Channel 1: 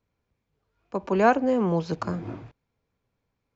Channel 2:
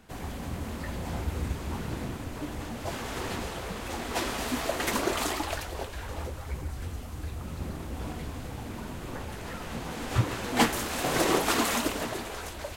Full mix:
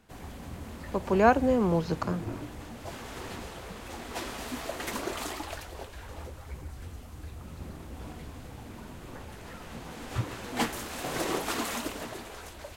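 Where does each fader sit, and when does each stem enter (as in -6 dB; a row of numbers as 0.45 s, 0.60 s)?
-1.5 dB, -6.0 dB; 0.00 s, 0.00 s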